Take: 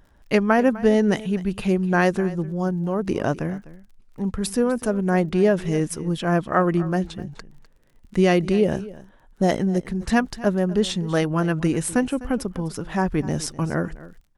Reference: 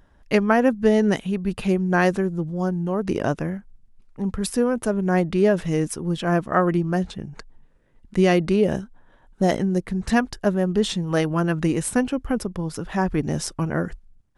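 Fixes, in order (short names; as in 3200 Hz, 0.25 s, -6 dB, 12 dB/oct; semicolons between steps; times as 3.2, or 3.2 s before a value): de-click; inverse comb 0.252 s -18 dB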